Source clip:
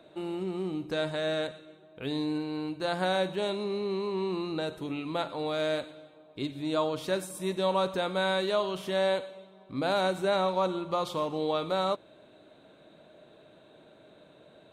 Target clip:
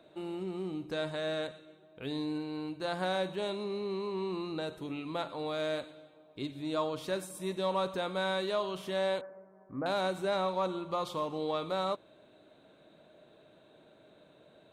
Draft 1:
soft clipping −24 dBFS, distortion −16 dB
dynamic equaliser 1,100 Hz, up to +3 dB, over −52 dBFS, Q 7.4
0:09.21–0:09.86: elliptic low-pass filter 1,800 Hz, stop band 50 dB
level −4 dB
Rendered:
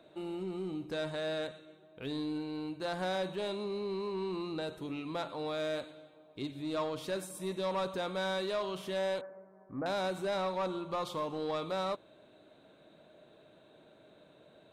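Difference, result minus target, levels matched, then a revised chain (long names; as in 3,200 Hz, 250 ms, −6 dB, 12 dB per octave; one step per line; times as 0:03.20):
soft clipping: distortion +14 dB
soft clipping −15 dBFS, distortion −30 dB
dynamic equaliser 1,100 Hz, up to +3 dB, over −52 dBFS, Q 7.4
0:09.21–0:09.86: elliptic low-pass filter 1,800 Hz, stop band 50 dB
level −4 dB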